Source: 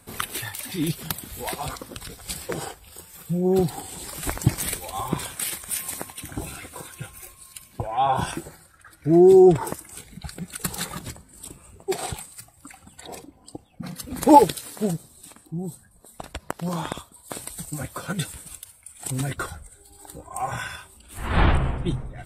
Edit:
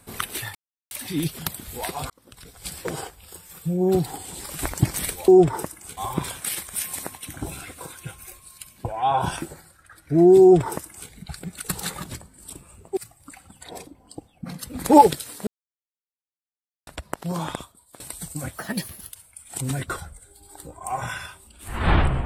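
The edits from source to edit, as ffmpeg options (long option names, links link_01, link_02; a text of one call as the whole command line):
ffmpeg -i in.wav -filter_complex "[0:a]asplit=11[link_01][link_02][link_03][link_04][link_05][link_06][link_07][link_08][link_09][link_10][link_11];[link_01]atrim=end=0.55,asetpts=PTS-STARTPTS,afade=type=out:start_time=0.546:duration=0.004:curve=hsin,apad=pad_dur=0.36[link_12];[link_02]atrim=start=0.55:end=1.74,asetpts=PTS-STARTPTS,afade=type=in:duration=0.004:curve=hsin,afade=type=out:start_time=1.186:duration=0.004:curve=hsin[link_13];[link_03]atrim=start=1.74:end=4.922,asetpts=PTS-STARTPTS,afade=type=in:duration=0.75[link_14];[link_04]atrim=start=9.358:end=10.052[link_15];[link_05]atrim=start=4.918:end=11.922[link_16];[link_06]atrim=start=12.338:end=14.84,asetpts=PTS-STARTPTS,afade=type=out:start_time=2.498:duration=0.004:curve=hsin[link_17];[link_07]atrim=start=14.84:end=16.24,asetpts=PTS-STARTPTS,volume=0[link_18];[link_08]atrim=start=16.24:end=17.37,asetpts=PTS-STARTPTS,afade=type=in:duration=0.004:curve=hsin,afade=type=out:start_time=0.64:duration=0.49:silence=0.125893[link_19];[link_09]atrim=start=17.37:end=17.954,asetpts=PTS-STARTPTS,afade=type=in:duration=0.004:curve=hsin:silence=0.125893[link_20];[link_10]atrim=start=17.95:end=18.61,asetpts=PTS-STARTPTS,asetrate=54684,aresample=44100[link_21];[link_11]atrim=start=18.606[link_22];[link_12][link_13][link_14]concat=n=3:v=0:a=1[link_23];[link_23][link_15]acrossfade=duration=0.004:curve1=hsin:curve2=hsin[link_24];[link_24][link_16]acrossfade=duration=0.004:curve1=hsin:curve2=hsin[link_25];[link_17][link_18][link_19][link_20]concat=n=4:v=0:a=1[link_26];[link_25][link_26]acrossfade=duration=0.004:curve1=hsin:curve2=hsin[link_27];[link_27][link_21]acrossfade=duration=0.004:curve1=hsin:curve2=hsin[link_28];[link_28][link_22]acrossfade=duration=0.004:curve1=hsin:curve2=hsin" out.wav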